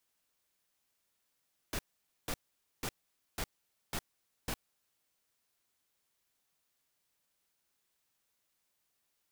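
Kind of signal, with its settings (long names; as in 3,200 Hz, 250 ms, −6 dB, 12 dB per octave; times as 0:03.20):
noise bursts pink, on 0.06 s, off 0.49 s, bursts 6, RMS −36 dBFS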